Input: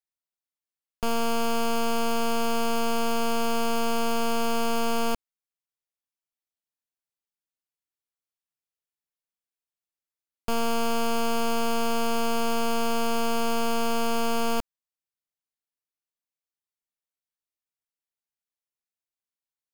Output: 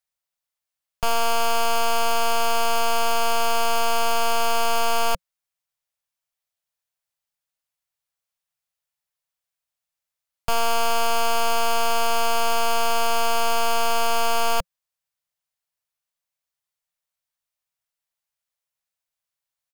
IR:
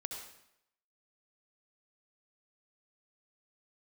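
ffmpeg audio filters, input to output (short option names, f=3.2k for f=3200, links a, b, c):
-af "firequalizer=gain_entry='entry(170,0);entry(270,-28);entry(530,1)':delay=0.05:min_phase=1,volume=5.5dB"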